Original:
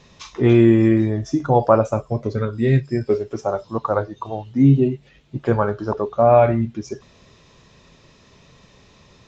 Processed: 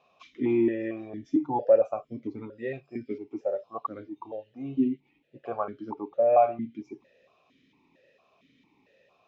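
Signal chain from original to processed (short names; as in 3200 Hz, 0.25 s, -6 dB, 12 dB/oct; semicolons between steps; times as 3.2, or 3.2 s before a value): vowel sequencer 4.4 Hz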